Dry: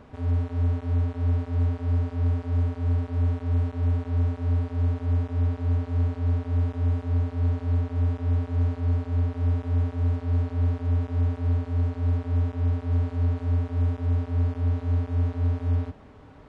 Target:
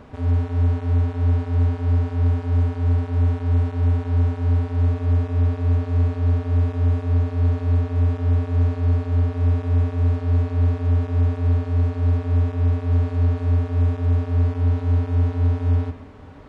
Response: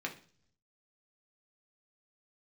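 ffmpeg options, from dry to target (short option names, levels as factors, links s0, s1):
-filter_complex "[0:a]asplit=2[s0][s1];[1:a]atrim=start_sample=2205,adelay=115[s2];[s1][s2]afir=irnorm=-1:irlink=0,volume=0.237[s3];[s0][s3]amix=inputs=2:normalize=0,volume=1.78"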